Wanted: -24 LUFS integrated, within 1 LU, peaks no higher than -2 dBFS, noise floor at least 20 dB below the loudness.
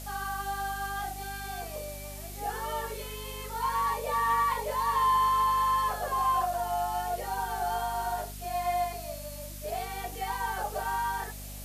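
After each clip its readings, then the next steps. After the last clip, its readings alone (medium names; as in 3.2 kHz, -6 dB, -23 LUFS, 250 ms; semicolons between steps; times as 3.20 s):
hum 50 Hz; highest harmonic 250 Hz; hum level -41 dBFS; noise floor -41 dBFS; noise floor target -51 dBFS; loudness -30.5 LUFS; peak level -17.0 dBFS; loudness target -24.0 LUFS
-> hum notches 50/100/150/200/250 Hz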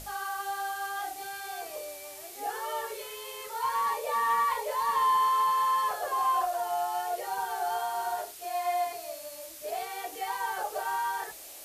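hum not found; noise floor -45 dBFS; noise floor target -51 dBFS
-> noise print and reduce 6 dB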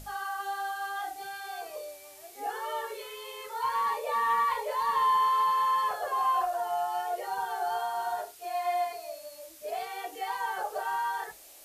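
noise floor -51 dBFS; loudness -30.5 LUFS; peak level -18.0 dBFS; loudness target -24.0 LUFS
-> trim +6.5 dB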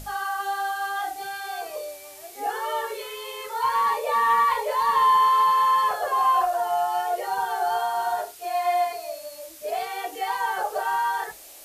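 loudness -24.0 LUFS; peak level -11.5 dBFS; noise floor -44 dBFS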